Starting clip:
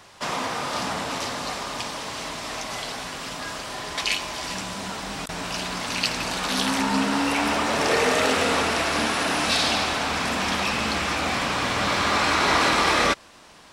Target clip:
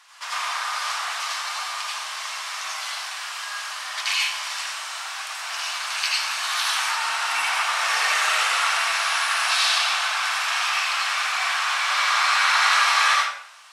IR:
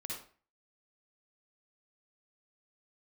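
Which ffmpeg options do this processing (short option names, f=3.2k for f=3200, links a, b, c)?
-filter_complex "[0:a]highpass=f=1k:w=0.5412,highpass=f=1k:w=1.3066[a];[1:a]atrim=start_sample=2205,asetrate=27342,aresample=44100[b];[a][b]afir=irnorm=-1:irlink=0,volume=1dB"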